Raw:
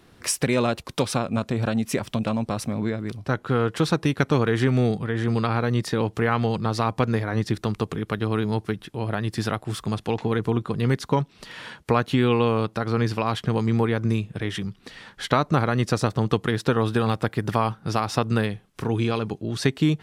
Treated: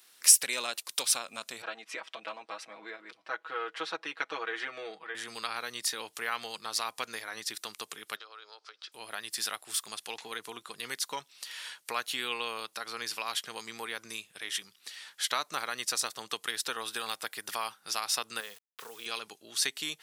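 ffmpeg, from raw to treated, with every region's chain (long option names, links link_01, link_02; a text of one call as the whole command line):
ffmpeg -i in.wav -filter_complex "[0:a]asettb=1/sr,asplit=3[link_01][link_02][link_03];[link_01]atrim=end=1.624[link_04];[link_02]atrim=start=1.62:end=5.15,asetpts=PTS-STARTPTS,afade=type=in:duration=0.004:curve=qsin,afade=type=out:start_time=3.526:duration=0.004:curve=qsin,highpass=300,lowpass=2100,aecho=1:1:6.2:0.95,atrim=end_sample=155673[link_05];[link_03]atrim=start=5.146[link_06];[link_04][link_05]acrossfade=duration=0.004:curve1=hsin:curve2=qsin[link_07];[link_07][link_06]acrossfade=duration=0.004:curve1=qsin:curve2=hsin,asettb=1/sr,asplit=3[link_08][link_09][link_10];[link_08]atrim=end=8.164[link_11];[link_09]atrim=start=8.16:end=8.92,asetpts=PTS-STARTPTS,afade=type=in:duration=0.004:curve=qsin,afade=type=out:start_time=0.756:duration=0.004:curve=qsin,highpass=frequency=410:width=0.5412,highpass=frequency=410:width=1.3066,equalizer=frequency=520:width_type=q:width=4:gain=7,equalizer=frequency=1300:width_type=q:width=4:gain=10,equalizer=frequency=1900:width_type=q:width=4:gain=-5,equalizer=frequency=4800:width_type=q:width=4:gain=7,lowpass=frequency=5600:width=0.5412,lowpass=frequency=5600:width=1.3066,bandreject=frequency=2800:width=24,acompressor=threshold=-39dB:ratio=3:attack=3.2:release=140:knee=1:detection=peak[link_12];[link_10]atrim=start=8.916[link_13];[link_11][link_12]acrossfade=duration=0.004:curve1=hsin:curve2=qsin[link_14];[link_14][link_13]acrossfade=duration=0.004:curve1=qsin:curve2=hsin,asettb=1/sr,asplit=3[link_15][link_16][link_17];[link_15]atrim=end=18.404[link_18];[link_16]atrim=start=18.4:end=19.06,asetpts=PTS-STARTPTS,afade=type=in:duration=0.004:curve=qsin,afade=type=out:start_time=0.656:duration=0.004:curve=qsin,highpass=130,equalizer=frequency=310:width_type=q:width=4:gain=-6,equalizer=frequency=480:width_type=q:width=4:gain=9,equalizer=frequency=1200:width_type=q:width=4:gain=4,equalizer=frequency=2300:width_type=q:width=4:gain=-6,lowpass=frequency=3700:width=0.5412,lowpass=frequency=3700:width=1.3066,acompressor=threshold=-26dB:ratio=3:attack=3.2:release=140:knee=1:detection=peak,aeval=exprs='val(0)*gte(abs(val(0)),0.00562)':channel_layout=same[link_19];[link_17]atrim=start=19.056[link_20];[link_18][link_19]acrossfade=duration=0.004:curve1=hsin:curve2=qsin[link_21];[link_21][link_20]acrossfade=duration=0.004:curve1=qsin:curve2=hsin,highpass=frequency=390:poles=1,aderivative,volume=6.5dB" out.wav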